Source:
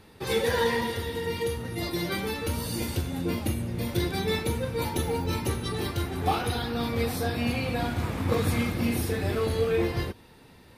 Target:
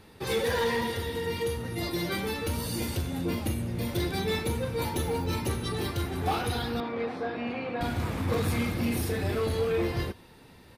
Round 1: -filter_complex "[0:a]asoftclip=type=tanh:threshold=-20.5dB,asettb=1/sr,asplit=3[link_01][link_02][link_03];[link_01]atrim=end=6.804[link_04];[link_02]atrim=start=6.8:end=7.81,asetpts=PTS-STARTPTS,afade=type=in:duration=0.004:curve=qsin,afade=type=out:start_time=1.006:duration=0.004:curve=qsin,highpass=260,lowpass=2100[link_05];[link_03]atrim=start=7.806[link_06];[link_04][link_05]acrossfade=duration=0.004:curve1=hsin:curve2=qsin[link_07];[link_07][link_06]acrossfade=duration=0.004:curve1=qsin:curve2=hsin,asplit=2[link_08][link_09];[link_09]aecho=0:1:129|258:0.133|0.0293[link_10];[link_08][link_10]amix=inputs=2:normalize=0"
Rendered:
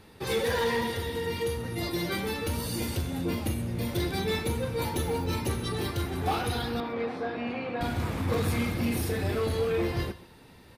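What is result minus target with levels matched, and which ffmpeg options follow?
echo-to-direct +9.5 dB
-filter_complex "[0:a]asoftclip=type=tanh:threshold=-20.5dB,asettb=1/sr,asplit=3[link_01][link_02][link_03];[link_01]atrim=end=6.804[link_04];[link_02]atrim=start=6.8:end=7.81,asetpts=PTS-STARTPTS,afade=type=in:duration=0.004:curve=qsin,afade=type=out:start_time=1.006:duration=0.004:curve=qsin,highpass=260,lowpass=2100[link_05];[link_03]atrim=start=7.806[link_06];[link_04][link_05]acrossfade=duration=0.004:curve1=hsin:curve2=qsin[link_07];[link_07][link_06]acrossfade=duration=0.004:curve1=qsin:curve2=hsin,asplit=2[link_08][link_09];[link_09]aecho=0:1:129:0.0447[link_10];[link_08][link_10]amix=inputs=2:normalize=0"

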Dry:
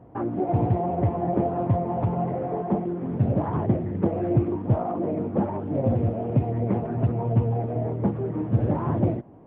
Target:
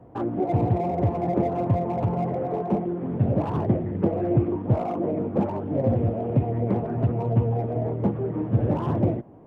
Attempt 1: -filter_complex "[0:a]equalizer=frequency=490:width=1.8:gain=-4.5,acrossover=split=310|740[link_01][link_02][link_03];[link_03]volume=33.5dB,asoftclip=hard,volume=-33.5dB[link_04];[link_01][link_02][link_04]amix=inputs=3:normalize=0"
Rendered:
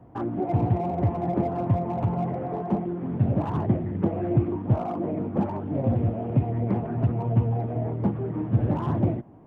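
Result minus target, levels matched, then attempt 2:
500 Hz band −3.0 dB
-filter_complex "[0:a]equalizer=frequency=490:width=1.8:gain=2,acrossover=split=310|740[link_01][link_02][link_03];[link_03]volume=33.5dB,asoftclip=hard,volume=-33.5dB[link_04];[link_01][link_02][link_04]amix=inputs=3:normalize=0"

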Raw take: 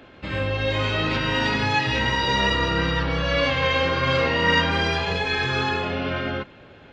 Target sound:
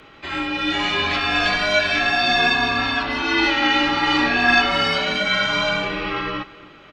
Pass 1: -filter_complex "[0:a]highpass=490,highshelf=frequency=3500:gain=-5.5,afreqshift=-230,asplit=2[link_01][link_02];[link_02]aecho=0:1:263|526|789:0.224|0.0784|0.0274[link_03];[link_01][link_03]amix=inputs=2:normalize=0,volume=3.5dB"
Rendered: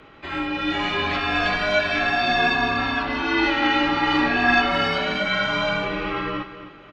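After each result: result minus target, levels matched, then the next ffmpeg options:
8,000 Hz band −6.0 dB; echo-to-direct +7.5 dB
-filter_complex "[0:a]highpass=490,highshelf=frequency=3500:gain=5.5,afreqshift=-230,asplit=2[link_01][link_02];[link_02]aecho=0:1:263|526|789:0.224|0.0784|0.0274[link_03];[link_01][link_03]amix=inputs=2:normalize=0,volume=3.5dB"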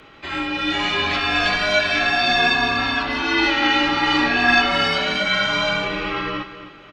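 echo-to-direct +7.5 dB
-filter_complex "[0:a]highpass=490,highshelf=frequency=3500:gain=5.5,afreqshift=-230,asplit=2[link_01][link_02];[link_02]aecho=0:1:263|526|789:0.0944|0.033|0.0116[link_03];[link_01][link_03]amix=inputs=2:normalize=0,volume=3.5dB"

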